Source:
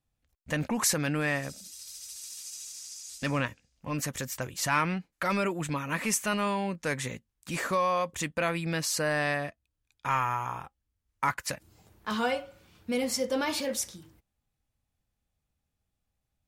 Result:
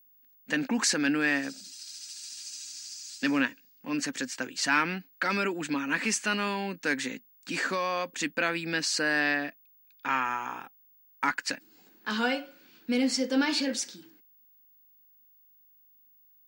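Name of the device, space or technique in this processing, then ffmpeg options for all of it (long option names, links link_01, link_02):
old television with a line whistle: -filter_complex "[0:a]asettb=1/sr,asplit=3[link_01][link_02][link_03];[link_01]atrim=end=9.204[link_04];[link_02]atrim=start=9.2:end=10.25,asetpts=PTS-STARTPTS,afade=type=in:duration=0.004:curve=qsin,afade=type=out:start_time=1.046:duration=0.004:curve=qsin,lowpass=5900[link_05];[link_03]atrim=start=10.246[link_06];[link_04][link_05]acrossfade=duration=0.004:curve1=hsin:curve2=qsin[link_07];[link_07][link_06]acrossfade=duration=0.004:curve1=qsin:curve2=hsin,highpass=frequency=210:width=0.5412,highpass=frequency=210:width=1.3066,equalizer=frequency=270:width_type=q:width=4:gain=9,equalizer=frequency=600:width_type=q:width=4:gain=-6,equalizer=frequency=1100:width_type=q:width=4:gain=-5,equalizer=frequency=1600:width_type=q:width=4:gain=7,equalizer=frequency=2700:width_type=q:width=4:gain=4,equalizer=frequency=4500:width_type=q:width=4:gain=7,lowpass=frequency=8100:width=0.5412,lowpass=frequency=8100:width=1.3066,aeval=exprs='val(0)+0.00126*sin(2*PI*15625*n/s)':channel_layout=same"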